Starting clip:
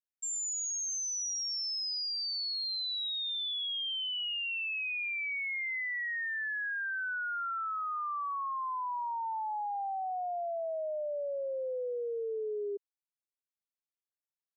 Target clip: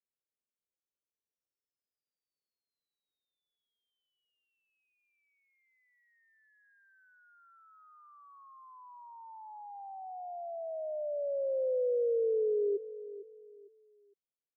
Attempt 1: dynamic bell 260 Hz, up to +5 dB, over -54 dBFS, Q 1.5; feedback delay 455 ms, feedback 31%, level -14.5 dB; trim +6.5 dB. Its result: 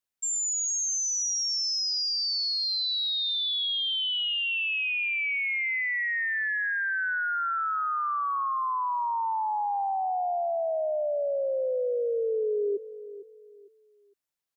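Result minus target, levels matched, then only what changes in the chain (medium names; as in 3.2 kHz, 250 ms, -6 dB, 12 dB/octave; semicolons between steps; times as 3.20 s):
500 Hz band -3.5 dB
add after dynamic bell: four-pole ladder low-pass 570 Hz, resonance 50%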